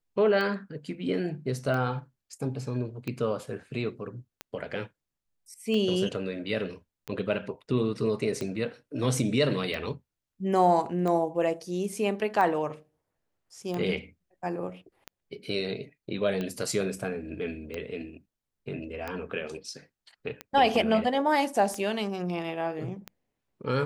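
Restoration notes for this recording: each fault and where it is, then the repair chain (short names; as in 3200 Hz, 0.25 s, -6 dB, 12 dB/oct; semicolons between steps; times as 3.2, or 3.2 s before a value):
tick 45 rpm -20 dBFS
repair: de-click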